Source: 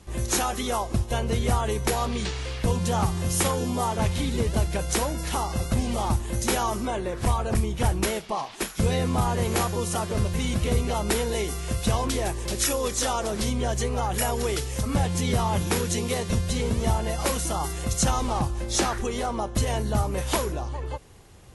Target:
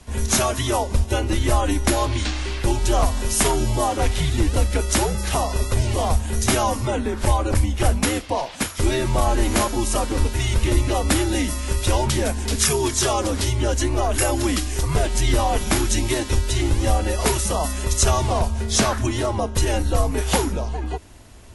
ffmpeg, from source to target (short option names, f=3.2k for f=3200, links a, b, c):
-af "afreqshift=-130,volume=5.5dB"